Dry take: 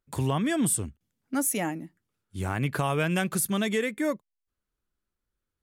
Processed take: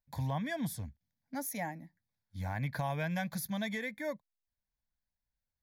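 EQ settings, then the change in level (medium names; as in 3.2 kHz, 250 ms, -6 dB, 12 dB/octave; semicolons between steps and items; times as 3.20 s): static phaser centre 1.9 kHz, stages 8; -5.0 dB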